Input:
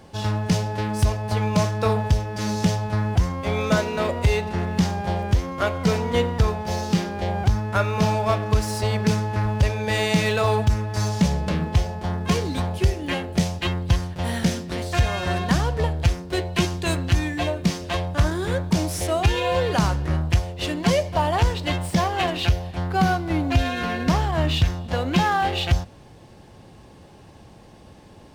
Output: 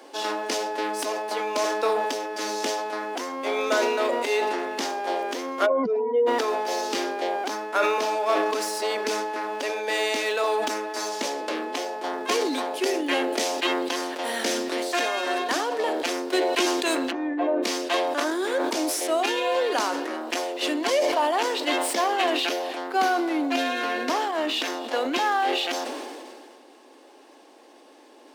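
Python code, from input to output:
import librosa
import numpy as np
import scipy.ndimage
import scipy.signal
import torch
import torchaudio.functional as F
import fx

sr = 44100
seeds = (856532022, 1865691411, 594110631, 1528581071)

y = fx.spec_expand(x, sr, power=2.4, at=(5.65, 6.26), fade=0.02)
y = fx.lowpass(y, sr, hz=1100.0, slope=12, at=(17.1, 17.62), fade=0.02)
y = fx.rider(y, sr, range_db=10, speed_s=0.5)
y = scipy.signal.sosfilt(scipy.signal.butter(12, 260.0, 'highpass', fs=sr, output='sos'), y)
y = fx.sustainer(y, sr, db_per_s=27.0)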